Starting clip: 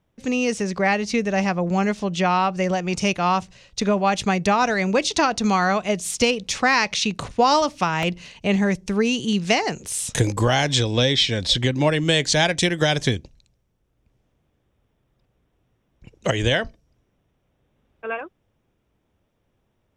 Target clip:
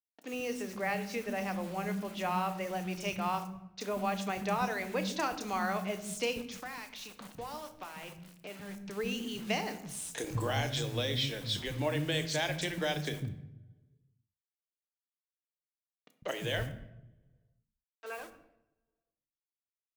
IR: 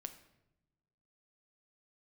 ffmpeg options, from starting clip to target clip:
-filter_complex "[0:a]asplit=3[s0][s1][s2];[s0]afade=t=out:st=6.41:d=0.02[s3];[s1]acompressor=threshold=0.0355:ratio=4,afade=t=in:st=6.41:d=0.02,afade=t=out:st=8.79:d=0.02[s4];[s2]afade=t=in:st=8.79:d=0.02[s5];[s3][s4][s5]amix=inputs=3:normalize=0,acrusher=bits=5:mix=0:aa=0.000001,acrossover=split=250|5400[s6][s7][s8];[s8]adelay=30[s9];[s6]adelay=150[s10];[s10][s7][s9]amix=inputs=3:normalize=0[s11];[1:a]atrim=start_sample=2205[s12];[s11][s12]afir=irnorm=-1:irlink=0,volume=0.355"

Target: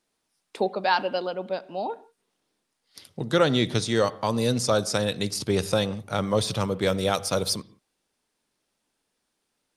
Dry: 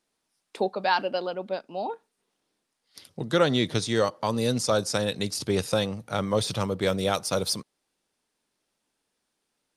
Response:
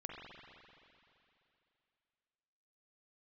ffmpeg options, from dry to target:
-filter_complex "[0:a]asplit=2[s0][s1];[1:a]atrim=start_sample=2205,afade=t=out:st=0.23:d=0.01,atrim=end_sample=10584,lowshelf=f=180:g=10.5[s2];[s1][s2]afir=irnorm=-1:irlink=0,volume=0.251[s3];[s0][s3]amix=inputs=2:normalize=0"

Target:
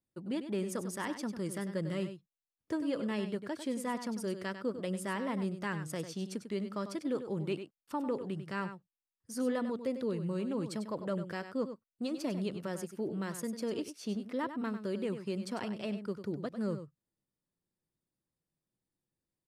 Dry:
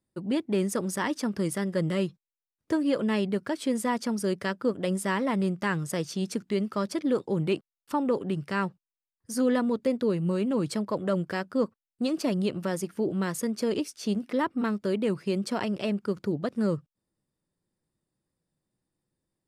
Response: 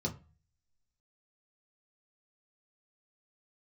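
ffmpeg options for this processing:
-af "aecho=1:1:98:0.316,volume=0.376"

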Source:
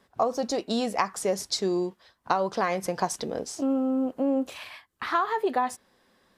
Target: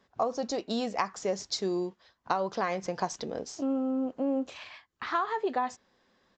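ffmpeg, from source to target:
-af "aresample=16000,aresample=44100,volume=0.631"

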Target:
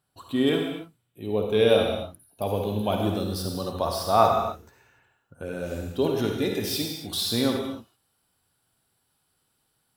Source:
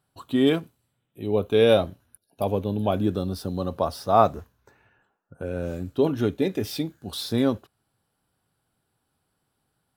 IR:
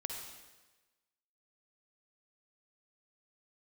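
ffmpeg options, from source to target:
-filter_complex "[0:a]asetnsamples=n=441:p=0,asendcmd='2.45 highshelf g 9.5',highshelf=f=2000:g=3.5[s0];[1:a]atrim=start_sample=2205,afade=t=out:st=0.35:d=0.01,atrim=end_sample=15876[s1];[s0][s1]afir=irnorm=-1:irlink=0,volume=0.841"

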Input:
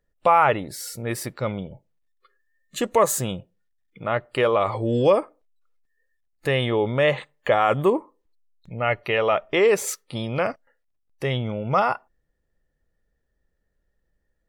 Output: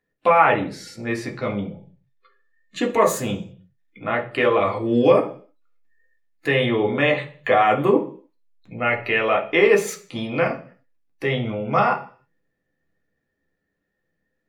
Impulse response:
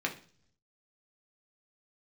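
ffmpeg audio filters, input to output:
-filter_complex "[0:a]asplit=3[s0][s1][s2];[s0]afade=t=out:st=0.69:d=0.02[s3];[s1]lowpass=6800,afade=t=in:st=0.69:d=0.02,afade=t=out:st=2.8:d=0.02[s4];[s2]afade=t=in:st=2.8:d=0.02[s5];[s3][s4][s5]amix=inputs=3:normalize=0[s6];[1:a]atrim=start_sample=2205,afade=t=out:st=0.38:d=0.01,atrim=end_sample=17199[s7];[s6][s7]afir=irnorm=-1:irlink=0,volume=0.75"

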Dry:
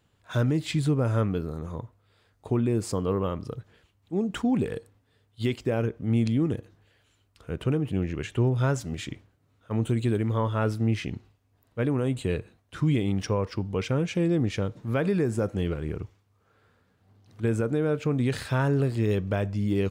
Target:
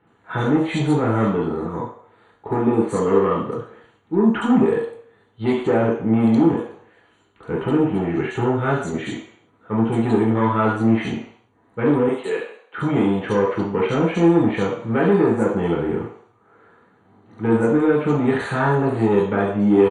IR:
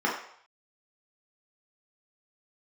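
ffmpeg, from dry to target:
-filter_complex "[0:a]asettb=1/sr,asplit=3[s0][s1][s2];[s0]atrim=end=12.084[s3];[s1]atrim=start=12.08:end=12.78,asetpts=PTS-STARTPTS,afade=t=in:d=0.004:c=qsin,afade=t=out:st=0.696:d=0.004:c=qsin,highpass=580[s4];[s2]atrim=start=12.776[s5];[s3][s4]acrossfade=d=0.004:c1=hsin:c2=qsin[s6];[s6][s5]acrossfade=d=0.004:c1=qsin:c2=hsin,acrossover=split=2300[s7][s8];[s7]asoftclip=type=tanh:threshold=0.0596[s9];[s9][s8]amix=inputs=2:normalize=0,acrossover=split=3000[s10][s11];[s11]adelay=70[s12];[s10][s12]amix=inputs=2:normalize=0[s13];[1:a]atrim=start_sample=2205,afade=t=out:st=0.43:d=0.01,atrim=end_sample=19404[s14];[s13][s14]afir=irnorm=-1:irlink=0,aresample=22050,aresample=44100,asuperstop=centerf=5200:order=20:qfactor=4.5"

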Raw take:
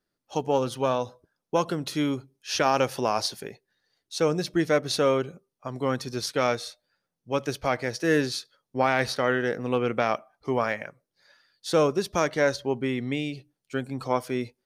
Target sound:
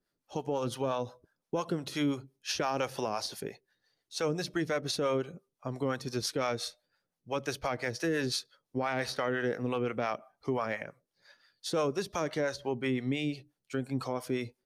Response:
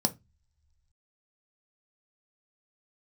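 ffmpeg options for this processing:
-filter_complex "[0:a]acrossover=split=540[s0][s1];[s0]aeval=exprs='val(0)*(1-0.7/2+0.7/2*cos(2*PI*5.8*n/s))':c=same[s2];[s1]aeval=exprs='val(0)*(1-0.7/2-0.7/2*cos(2*PI*5.8*n/s))':c=same[s3];[s2][s3]amix=inputs=2:normalize=0,alimiter=limit=0.0708:level=0:latency=1:release=147,volume=1.19" -ar 32000 -c:a libvorbis -b:a 128k

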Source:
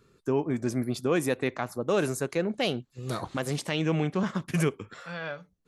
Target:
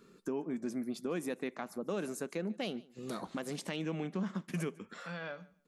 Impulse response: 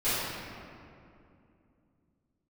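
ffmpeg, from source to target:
-filter_complex "[0:a]lowshelf=f=150:t=q:w=3:g=-8,acompressor=threshold=0.00562:ratio=2,asplit=2[s0][s1];[s1]aecho=0:1:148|296:0.075|0.012[s2];[s0][s2]amix=inputs=2:normalize=0,volume=1.12"

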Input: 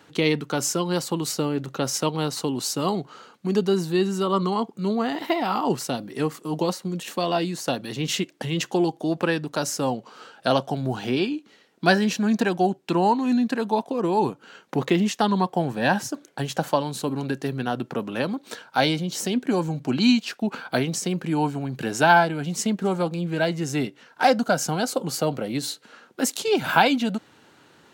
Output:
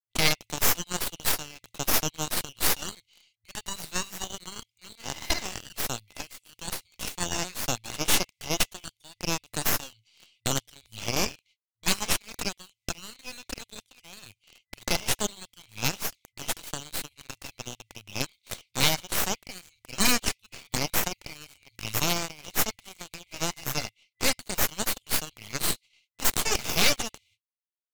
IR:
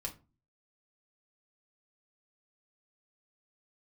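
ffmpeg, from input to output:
-filter_complex "[0:a]equalizer=f=1300:w=0.84:g=5.5,agate=range=0.00355:threshold=0.00562:ratio=16:detection=peak,afftfilt=real='re*(1-between(b*sr/4096,110,2000))':imag='im*(1-between(b*sr/4096,110,2000))':win_size=4096:overlap=0.75,asplit=2[s0][s1];[s1]acrusher=bits=6:mix=0:aa=0.000001,volume=0.668[s2];[s0][s2]amix=inputs=2:normalize=0,aeval=exprs='0.473*(cos(1*acos(clip(val(0)/0.473,-1,1)))-cos(1*PI/2))+0.075*(cos(3*acos(clip(val(0)/0.473,-1,1)))-cos(3*PI/2))+0.168*(cos(8*acos(clip(val(0)/0.473,-1,1)))-cos(8*PI/2))':c=same,volume=0.668"

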